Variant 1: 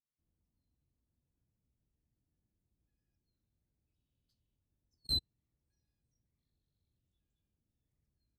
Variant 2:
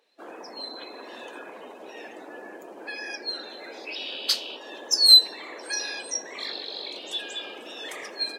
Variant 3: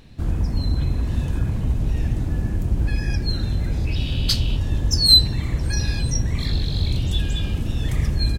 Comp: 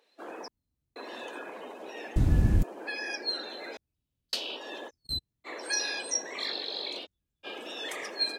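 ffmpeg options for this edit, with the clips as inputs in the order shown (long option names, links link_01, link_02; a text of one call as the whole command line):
ffmpeg -i take0.wav -i take1.wav -i take2.wav -filter_complex "[0:a]asplit=4[link_01][link_02][link_03][link_04];[1:a]asplit=6[link_05][link_06][link_07][link_08][link_09][link_10];[link_05]atrim=end=0.482[link_11];[link_01]atrim=start=0.478:end=0.962[link_12];[link_06]atrim=start=0.958:end=2.162[link_13];[2:a]atrim=start=2.158:end=2.632[link_14];[link_07]atrim=start=2.628:end=3.772[link_15];[link_02]atrim=start=3.768:end=4.332[link_16];[link_08]atrim=start=4.328:end=4.91[link_17];[link_03]atrim=start=4.87:end=5.48[link_18];[link_09]atrim=start=5.44:end=7.07[link_19];[link_04]atrim=start=7.03:end=7.47[link_20];[link_10]atrim=start=7.43[link_21];[link_11][link_12]acrossfade=duration=0.004:curve1=hsin:curve2=hsin[link_22];[link_22][link_13]acrossfade=duration=0.004:curve1=hsin:curve2=hsin[link_23];[link_23][link_14]acrossfade=duration=0.004:curve1=hsin:curve2=hsin[link_24];[link_24][link_15]acrossfade=duration=0.004:curve1=hsin:curve2=hsin[link_25];[link_25][link_16]acrossfade=duration=0.004:curve1=hsin:curve2=hsin[link_26];[link_26][link_17]acrossfade=duration=0.004:curve1=hsin:curve2=hsin[link_27];[link_27][link_18]acrossfade=duration=0.04:curve1=tri:curve2=tri[link_28];[link_28][link_19]acrossfade=duration=0.04:curve1=tri:curve2=tri[link_29];[link_29][link_20]acrossfade=duration=0.04:curve1=tri:curve2=tri[link_30];[link_30][link_21]acrossfade=duration=0.04:curve1=tri:curve2=tri" out.wav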